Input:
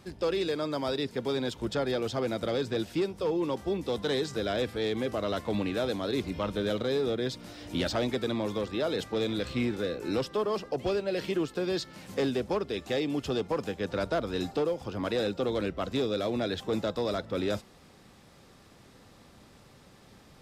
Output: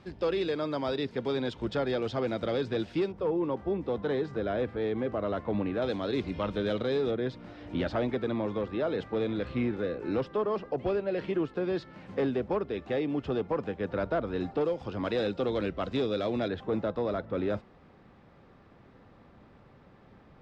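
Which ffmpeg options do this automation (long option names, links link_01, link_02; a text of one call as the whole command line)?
ffmpeg -i in.wav -af "asetnsamples=nb_out_samples=441:pad=0,asendcmd='3.12 lowpass f 1700;5.82 lowpass f 3600;7.11 lowpass f 2100;14.61 lowpass f 3800;16.48 lowpass f 1900',lowpass=3600" out.wav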